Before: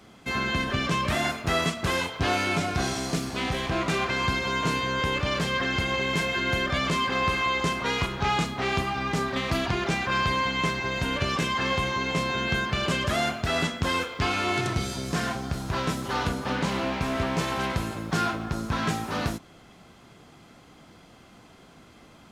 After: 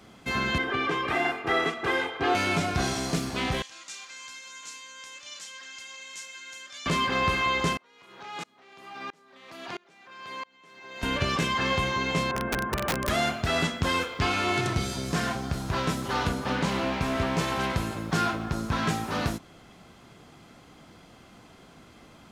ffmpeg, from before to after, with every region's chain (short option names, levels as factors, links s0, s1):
-filter_complex "[0:a]asettb=1/sr,asplit=3[s0][s1][s2];[s0]atrim=end=0.584[s3];[s1]atrim=start=0.58:end=2.35,asetpts=PTS-STARTPTS,afade=t=in:d=0.004:c=qsin,afade=t=out:st=1.766:d=0.004:c=qsin,acrossover=split=170 3000:gain=0.1 1 0.178[s4][s5][s6];[s4][s5][s6]amix=inputs=3:normalize=0,aecho=1:1:2.5:0.75,atrim=end_sample=78057[s7];[s2]atrim=start=2.346[s8];[s3][s7]acrossfade=d=0.004:c1=hsin:c2=qsin[s9];[s9][s8]acrossfade=d=0.004:c1=qsin:c2=hsin,asettb=1/sr,asplit=3[s10][s11][s12];[s10]atrim=end=3.624[s13];[s11]atrim=start=3.62:end=6.86,asetpts=PTS-STARTPTS,afade=t=in:d=0.004:c=qsin,afade=t=out:st=3.236:d=0.004:c=qsin,bandpass=f=6800:t=q:w=2.1,aecho=1:1:3.7:0.44,atrim=end_sample=142884[s14];[s12]atrim=start=6.856[s15];[s13][s14]acrossfade=d=0.004:c1=hsin:c2=qsin[s16];[s16][s15]acrossfade=d=0.004:c1=qsin:c2=hsin,asettb=1/sr,asplit=3[s17][s18][s19];[s17]atrim=end=7.774[s20];[s18]atrim=start=7.77:end=11.03,asetpts=PTS-STARTPTS,afade=t=in:d=0.004:c=qsin,afade=t=out:st=3.256:d=0.004:c=qsin,highpass=310,acompressor=threshold=0.0316:ratio=6:attack=3.2:release=140:knee=1:detection=peak,aeval=exprs='val(0)*pow(10,-30*if(lt(mod(-1.5*n/s,1),2*abs(-1.5)/1000),1-mod(-1.5*n/s,1)/(2*abs(-1.5)/1000),(mod(-1.5*n/s,1)-2*abs(-1.5)/1000)/(1-2*abs(-1.5)/1000))/20)':c=same[s21];[s19]atrim=start=11.026[s22];[s20][s21]acrossfade=d=0.004:c1=hsin:c2=qsin[s23];[s23][s22]acrossfade=d=0.004:c1=qsin:c2=hsin,asettb=1/sr,asplit=3[s24][s25][s26];[s24]atrim=end=12.314[s27];[s25]atrim=start=12.31:end=13.09,asetpts=PTS-STARTPTS,afade=t=in:d=0.004:c=qsin,afade=t=out:st=0.776:d=0.004:c=qsin,lowpass=f=1600:w=0.5412,lowpass=f=1600:w=1.3066,aeval=exprs='(mod(10.6*val(0)+1,2)-1)/10.6':c=same[s28];[s26]atrim=start=13.086[s29];[s27][s28]acrossfade=d=0.004:c1=hsin:c2=qsin[s30];[s30][s29]acrossfade=d=0.004:c1=qsin:c2=hsin"